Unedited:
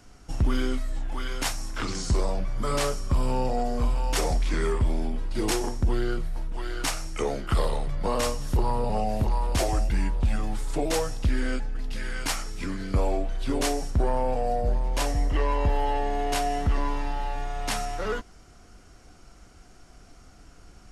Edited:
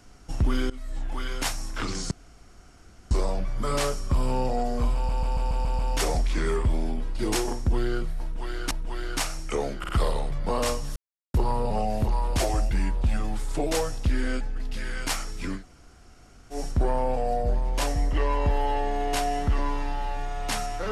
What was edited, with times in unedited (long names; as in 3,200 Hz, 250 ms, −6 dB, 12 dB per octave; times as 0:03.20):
0:00.70–0:01.02: fade in, from −19.5 dB
0:02.11: splice in room tone 1.00 s
0:03.95: stutter 0.14 s, 7 plays
0:06.38–0:06.87: repeat, 2 plays
0:07.46: stutter 0.05 s, 3 plays
0:08.53: splice in silence 0.38 s
0:12.78–0:13.74: fill with room tone, crossfade 0.10 s